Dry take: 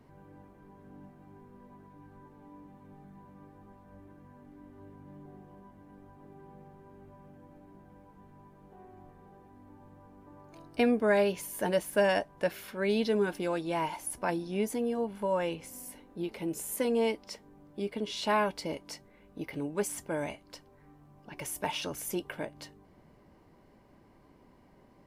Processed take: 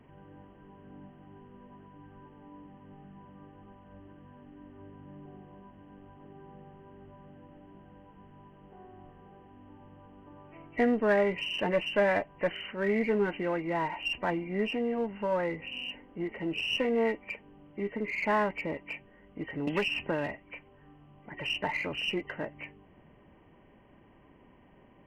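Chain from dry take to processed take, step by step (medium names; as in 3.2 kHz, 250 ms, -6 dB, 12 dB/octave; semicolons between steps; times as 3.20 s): knee-point frequency compression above 1.8 kHz 4:1; in parallel at -3.5 dB: one-sided clip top -35 dBFS; 19.67–20.28 s: on the sum: three bands compressed up and down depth 100%; trim -3 dB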